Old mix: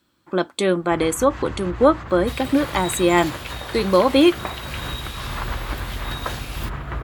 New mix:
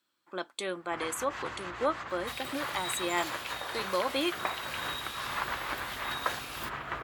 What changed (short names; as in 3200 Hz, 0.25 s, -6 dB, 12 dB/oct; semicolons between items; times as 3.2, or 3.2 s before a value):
speech -9.5 dB; second sound -5.0 dB; master: add HPF 880 Hz 6 dB/oct